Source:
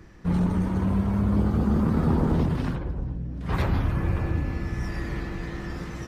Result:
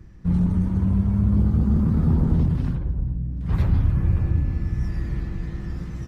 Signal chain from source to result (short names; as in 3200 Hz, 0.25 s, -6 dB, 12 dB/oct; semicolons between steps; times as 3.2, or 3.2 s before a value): tone controls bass +14 dB, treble +2 dB; gain -8 dB